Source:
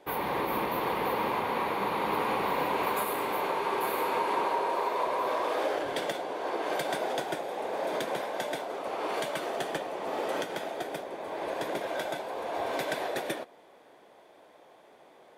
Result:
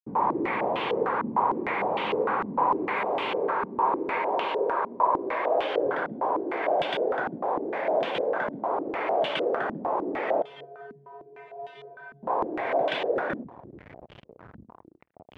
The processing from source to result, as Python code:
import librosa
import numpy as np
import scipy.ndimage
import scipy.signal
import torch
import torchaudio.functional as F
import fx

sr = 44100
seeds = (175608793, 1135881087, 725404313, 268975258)

p1 = fx.delta_hold(x, sr, step_db=-44.5)
p2 = scipy.signal.sosfilt(scipy.signal.butter(2, 95.0, 'highpass', fs=sr, output='sos'), p1)
p3 = fx.over_compress(p2, sr, threshold_db=-36.0, ratio=-1.0)
p4 = p2 + (p3 * 10.0 ** (0.0 / 20.0))
p5 = fx.comb_fb(p4, sr, f0_hz=140.0, decay_s=0.5, harmonics='odd', damping=0.0, mix_pct=100, at=(10.42, 12.23))
p6 = fx.echo_feedback(p5, sr, ms=226, feedback_pct=27, wet_db=-23.5)
p7 = fx.filter_held_lowpass(p6, sr, hz=6.6, low_hz=230.0, high_hz=3000.0)
y = p7 * 10.0 ** (-3.5 / 20.0)